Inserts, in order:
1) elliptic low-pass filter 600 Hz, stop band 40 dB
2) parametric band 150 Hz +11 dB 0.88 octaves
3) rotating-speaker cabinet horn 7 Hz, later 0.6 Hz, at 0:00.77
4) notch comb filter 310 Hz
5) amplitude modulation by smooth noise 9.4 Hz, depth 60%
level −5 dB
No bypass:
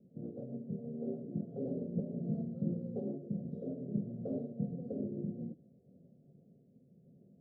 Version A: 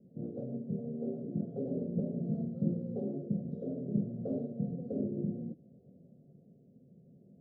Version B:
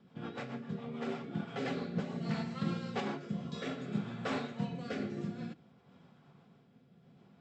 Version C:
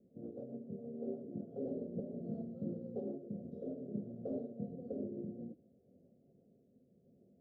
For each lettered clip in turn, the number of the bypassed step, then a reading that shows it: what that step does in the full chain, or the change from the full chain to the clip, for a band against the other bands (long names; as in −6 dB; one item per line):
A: 5, change in integrated loudness +3.0 LU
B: 1, change in integrated loudness +1.0 LU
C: 2, change in integrated loudness −4.0 LU